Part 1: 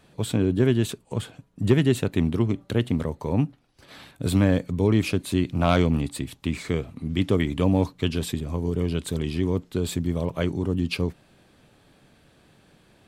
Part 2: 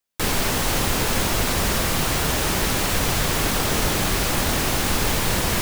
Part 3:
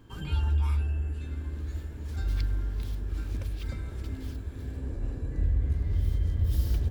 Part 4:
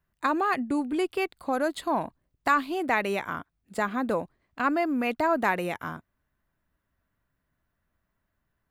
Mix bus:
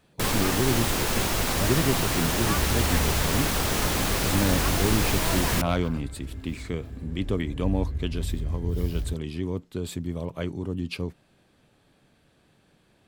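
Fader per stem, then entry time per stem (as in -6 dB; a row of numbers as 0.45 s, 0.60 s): -5.5 dB, -4.0 dB, -3.0 dB, -11.0 dB; 0.00 s, 0.00 s, 2.25 s, 0.00 s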